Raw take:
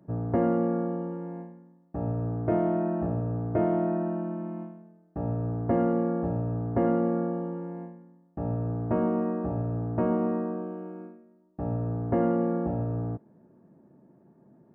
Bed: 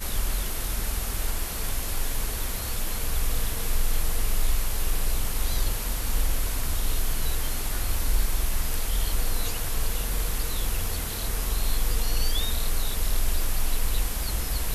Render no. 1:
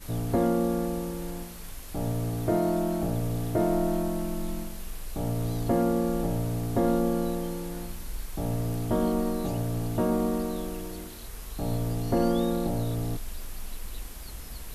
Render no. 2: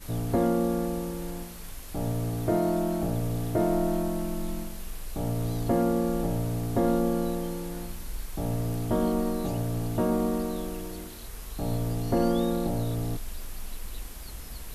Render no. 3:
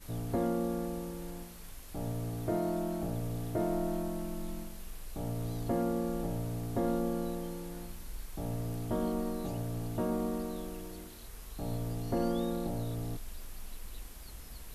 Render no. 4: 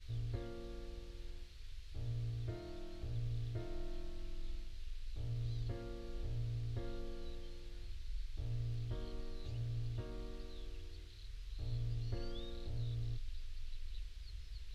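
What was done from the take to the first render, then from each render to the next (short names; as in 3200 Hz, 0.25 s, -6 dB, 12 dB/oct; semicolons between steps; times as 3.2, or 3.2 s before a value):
add bed -12.5 dB
nothing audible
gain -7 dB
EQ curve 110 Hz 0 dB, 180 Hz -26 dB, 400 Hz -14 dB, 790 Hz -24 dB, 1600 Hz -11 dB, 2500 Hz -6 dB, 4100 Hz -2 dB, 12000 Hz -29 dB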